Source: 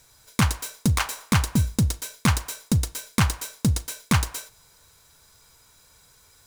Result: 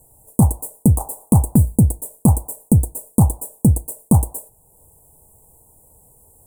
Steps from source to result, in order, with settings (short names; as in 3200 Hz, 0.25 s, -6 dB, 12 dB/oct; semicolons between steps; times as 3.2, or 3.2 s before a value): Chebyshev band-stop 830–8400 Hz, order 4; transient shaper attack 0 dB, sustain -4 dB; gain +9 dB